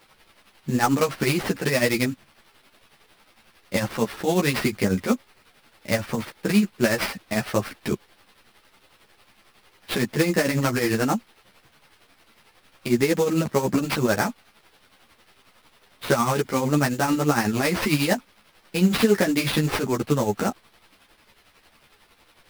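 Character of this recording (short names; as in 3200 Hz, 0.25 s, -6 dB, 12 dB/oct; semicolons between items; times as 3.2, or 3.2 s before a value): a quantiser's noise floor 10-bit, dither triangular; tremolo triangle 11 Hz, depth 70%; aliases and images of a low sample rate 7100 Hz, jitter 20%; a shimmering, thickened sound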